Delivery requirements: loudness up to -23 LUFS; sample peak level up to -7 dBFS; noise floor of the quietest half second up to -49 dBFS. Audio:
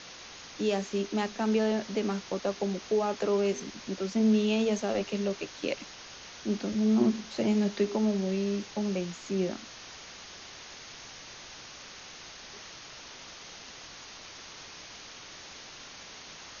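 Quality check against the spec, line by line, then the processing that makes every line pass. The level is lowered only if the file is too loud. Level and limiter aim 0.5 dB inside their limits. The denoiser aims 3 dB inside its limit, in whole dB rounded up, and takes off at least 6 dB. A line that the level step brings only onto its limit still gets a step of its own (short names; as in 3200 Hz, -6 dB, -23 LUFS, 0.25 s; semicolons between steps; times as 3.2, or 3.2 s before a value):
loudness -30.0 LUFS: OK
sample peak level -14.5 dBFS: OK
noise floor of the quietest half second -47 dBFS: fail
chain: denoiser 6 dB, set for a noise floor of -47 dBFS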